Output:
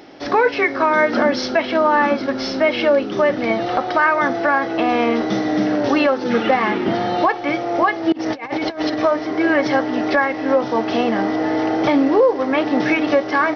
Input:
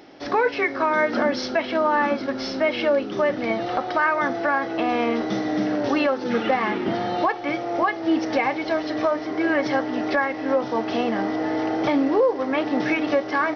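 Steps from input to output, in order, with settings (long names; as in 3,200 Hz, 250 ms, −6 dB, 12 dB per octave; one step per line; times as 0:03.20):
0:08.12–0:08.99: compressor whose output falls as the input rises −28 dBFS, ratio −0.5
level +5 dB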